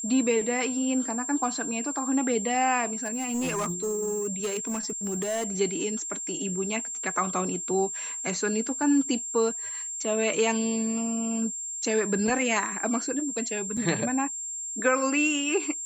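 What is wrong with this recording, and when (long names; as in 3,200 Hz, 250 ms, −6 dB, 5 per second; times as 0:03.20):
whistle 7,400 Hz −32 dBFS
0:03.03–0:05.47: clipping −25 dBFS
0:13.77: drop-out 4.2 ms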